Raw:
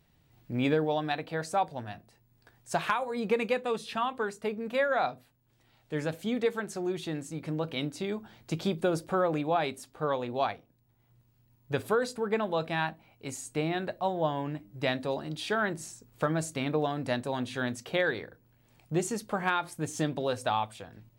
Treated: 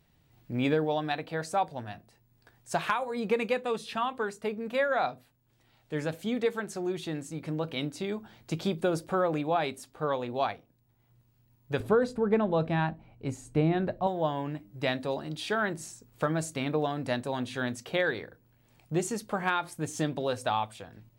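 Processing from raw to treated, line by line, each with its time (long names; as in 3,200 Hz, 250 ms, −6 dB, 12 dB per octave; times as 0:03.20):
0:11.80–0:14.07: spectral tilt −3 dB per octave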